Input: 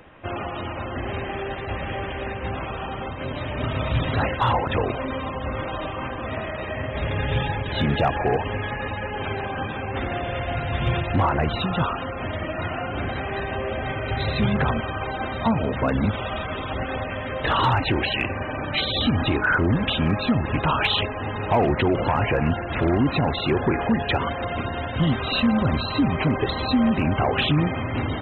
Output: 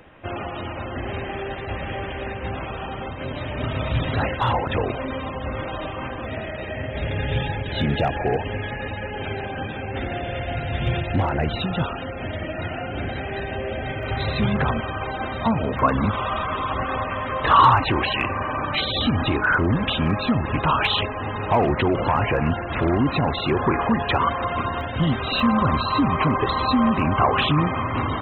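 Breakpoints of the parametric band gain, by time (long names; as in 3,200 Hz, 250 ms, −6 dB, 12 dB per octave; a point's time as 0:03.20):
parametric band 1,100 Hz 0.44 octaves
−2 dB
from 0:06.25 −9.5 dB
from 0:14.03 +1.5 dB
from 0:15.79 +12.5 dB
from 0:18.75 +4.5 dB
from 0:23.59 +11.5 dB
from 0:24.81 +2.5 dB
from 0:25.40 +13 dB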